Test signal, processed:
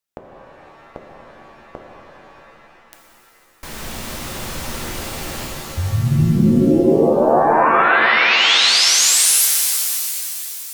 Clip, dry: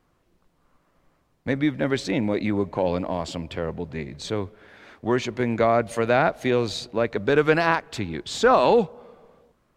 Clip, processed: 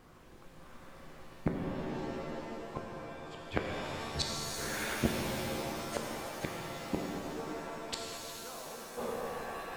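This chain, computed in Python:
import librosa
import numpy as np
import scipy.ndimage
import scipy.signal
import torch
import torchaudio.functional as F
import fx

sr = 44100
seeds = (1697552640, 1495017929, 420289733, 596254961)

y = fx.gate_flip(x, sr, shuts_db=-24.0, range_db=-41)
y = fx.rev_shimmer(y, sr, seeds[0], rt60_s=3.2, semitones=7, shimmer_db=-2, drr_db=-0.5)
y = y * 10.0 ** (8.0 / 20.0)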